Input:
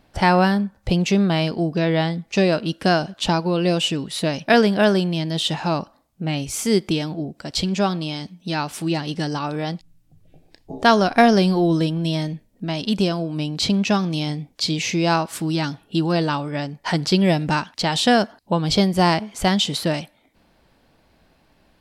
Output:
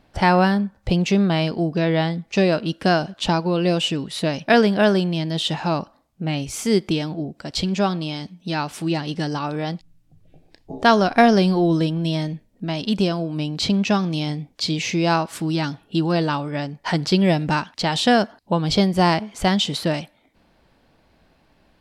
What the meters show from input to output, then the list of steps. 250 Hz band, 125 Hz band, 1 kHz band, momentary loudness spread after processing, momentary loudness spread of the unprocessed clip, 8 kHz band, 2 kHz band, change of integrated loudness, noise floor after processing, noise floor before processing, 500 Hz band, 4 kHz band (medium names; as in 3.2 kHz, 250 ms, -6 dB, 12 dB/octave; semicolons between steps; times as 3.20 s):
0.0 dB, 0.0 dB, 0.0 dB, 10 LU, 10 LU, -3.0 dB, -0.5 dB, 0.0 dB, -60 dBFS, -60 dBFS, 0.0 dB, -1.0 dB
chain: treble shelf 7.5 kHz -6.5 dB